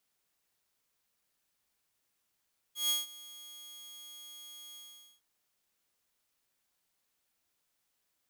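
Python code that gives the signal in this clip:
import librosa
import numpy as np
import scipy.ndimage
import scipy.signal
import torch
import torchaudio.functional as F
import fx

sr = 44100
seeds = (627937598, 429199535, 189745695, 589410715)

y = fx.adsr_tone(sr, wave='saw', hz=3300.0, attack_ms=145.0, decay_ms=165.0, sustain_db=-21.0, held_s=2.01, release_ms=448.0, level_db=-24.0)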